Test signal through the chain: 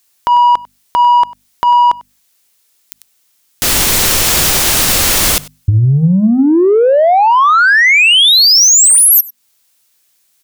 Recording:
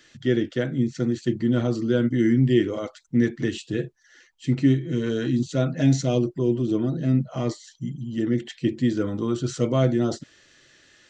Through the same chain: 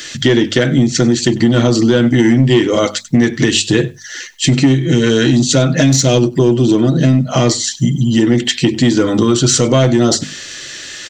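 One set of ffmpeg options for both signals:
-filter_complex "[0:a]asplit=2[a][b];[b]asoftclip=type=tanh:threshold=-20.5dB,volume=-11dB[c];[a][c]amix=inputs=2:normalize=0,highshelf=f=2.5k:g=11.5,acontrast=81,bandreject=f=50:t=h:w=6,bandreject=f=100:t=h:w=6,bandreject=f=150:t=h:w=6,bandreject=f=200:t=h:w=6,bandreject=f=250:t=h:w=6,acompressor=threshold=-19dB:ratio=6,asplit=2[d][e];[e]aecho=0:1:97:0.0794[f];[d][f]amix=inputs=2:normalize=0,alimiter=level_in=12dB:limit=-1dB:release=50:level=0:latency=1,volume=-1dB"

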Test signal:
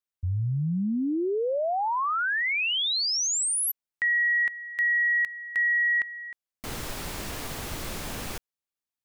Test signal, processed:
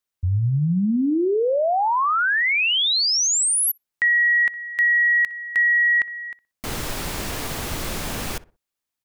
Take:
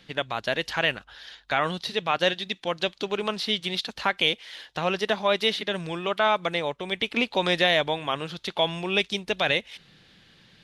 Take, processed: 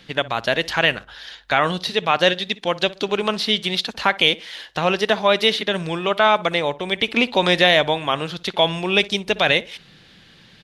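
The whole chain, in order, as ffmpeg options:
-filter_complex "[0:a]asplit=2[a][b];[b]adelay=61,lowpass=f=1.5k:p=1,volume=-17.5dB,asplit=2[c][d];[d]adelay=61,lowpass=f=1.5k:p=1,volume=0.32,asplit=2[e][f];[f]adelay=61,lowpass=f=1.5k:p=1,volume=0.32[g];[a][c][e][g]amix=inputs=4:normalize=0,volume=6.5dB"

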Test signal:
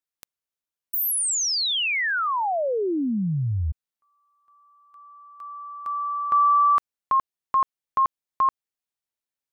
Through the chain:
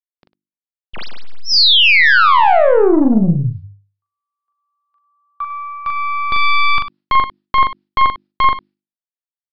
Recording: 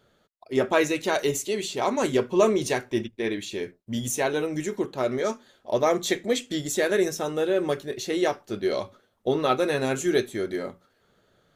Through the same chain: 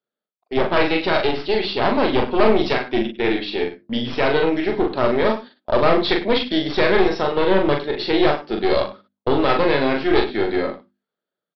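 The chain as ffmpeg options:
-filter_complex "[0:a]highpass=f=170:w=0.5412,highpass=f=170:w=1.3066,agate=range=-30dB:threshold=-43dB:ratio=16:release=147:detection=rms,bandreject=f=50:t=h:w=6,bandreject=f=100:t=h:w=6,bandreject=f=150:t=h:w=6,bandreject=f=200:t=h:w=6,bandreject=f=250:t=h:w=6,bandreject=f=300:t=h:w=6,bandreject=f=350:t=h:w=6,aeval=exprs='0.473*(cos(1*acos(clip(val(0)/0.473,-1,1)))-cos(1*PI/2))+0.168*(cos(4*acos(clip(val(0)/0.473,-1,1)))-cos(4*PI/2))':c=same,dynaudnorm=f=530:g=3:m=15dB,asplit=2[a][b];[b]alimiter=limit=-11.5dB:level=0:latency=1:release=39,volume=-1dB[c];[a][c]amix=inputs=2:normalize=0,asoftclip=type=tanh:threshold=-5.5dB,asplit=2[d][e];[e]aecho=0:1:41|100:0.631|0.188[f];[d][f]amix=inputs=2:normalize=0,aresample=11025,aresample=44100,volume=-1dB"

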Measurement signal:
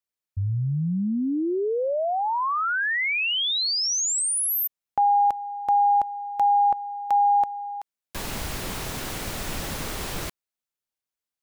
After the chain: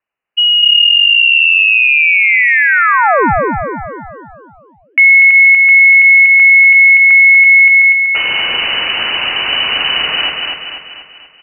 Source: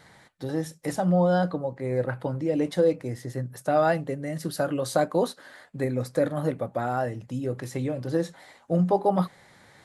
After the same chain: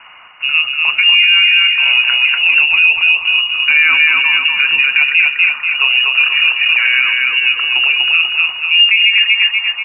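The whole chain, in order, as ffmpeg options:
-af "aecho=1:1:242|484|726|968|1210|1452|1694:0.668|0.334|0.167|0.0835|0.0418|0.0209|0.0104,lowpass=f=2.6k:t=q:w=0.5098,lowpass=f=2.6k:t=q:w=0.6013,lowpass=f=2.6k:t=q:w=0.9,lowpass=f=2.6k:t=q:w=2.563,afreqshift=-3000,alimiter=level_in=16dB:limit=-1dB:release=50:level=0:latency=1,volume=-1dB"

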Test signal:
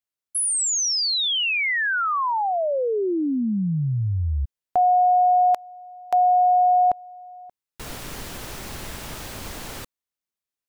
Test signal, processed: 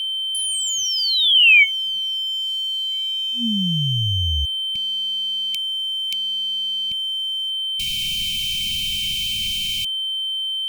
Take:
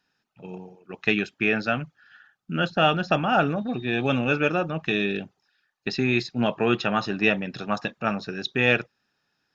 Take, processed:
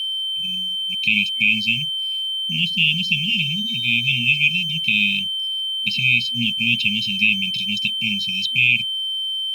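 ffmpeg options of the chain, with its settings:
-filter_complex "[0:a]acrossover=split=2700[a][b];[b]acompressor=threshold=-40dB:ratio=12:attack=1.5:release=406:knee=1:detection=peak[c];[a][c]amix=inputs=2:normalize=0,aeval=exprs='val(0)+0.0158*sin(2*PI*3100*n/s)':c=same,highshelf=f=1.5k:t=q:w=1.5:g=12,aeval=exprs='sgn(val(0))*max(abs(val(0))-0.00668,0)':c=same,afftfilt=real='re*(1-between(b*sr/4096,240,2200))':imag='im*(1-between(b*sr/4096,240,2200))':win_size=4096:overlap=0.75,alimiter=level_in=6dB:limit=-1dB:release=50:level=0:latency=1,volume=-5dB"

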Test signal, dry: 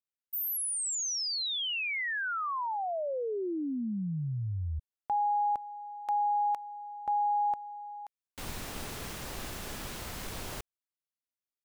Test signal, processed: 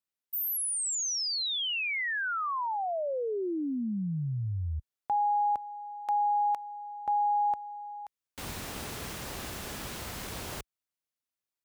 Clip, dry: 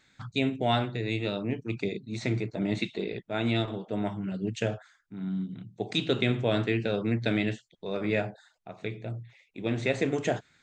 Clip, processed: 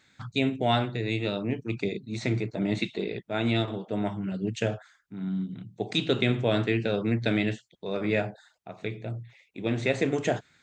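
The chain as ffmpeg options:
-af "highpass=43,volume=1.5dB"

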